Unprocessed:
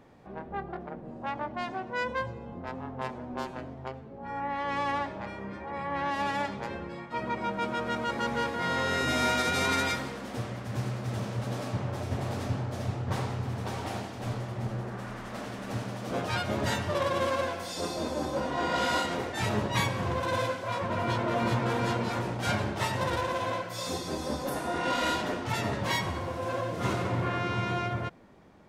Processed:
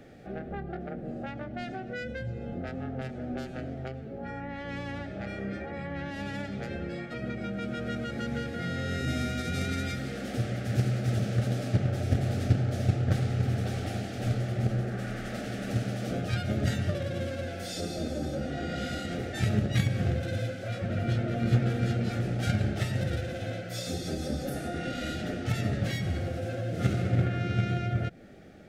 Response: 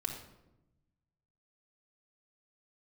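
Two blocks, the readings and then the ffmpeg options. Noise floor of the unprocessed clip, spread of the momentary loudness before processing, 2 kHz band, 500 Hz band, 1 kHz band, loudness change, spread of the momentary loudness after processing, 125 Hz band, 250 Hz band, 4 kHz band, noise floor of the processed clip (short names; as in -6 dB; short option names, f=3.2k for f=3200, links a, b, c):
-43 dBFS, 10 LU, -5.0 dB, -3.0 dB, -10.0 dB, 0.0 dB, 10 LU, +6.0 dB, +2.5 dB, -4.5 dB, -40 dBFS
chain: -filter_complex "[0:a]acrossover=split=220[a][b];[b]acompressor=threshold=-40dB:ratio=6[c];[a][c]amix=inputs=2:normalize=0,asplit=2[d][e];[e]acrusher=bits=3:mix=0:aa=0.5,volume=-7.5dB[f];[d][f]amix=inputs=2:normalize=0,asuperstop=centerf=1000:order=4:qfactor=1.9,volume=6dB"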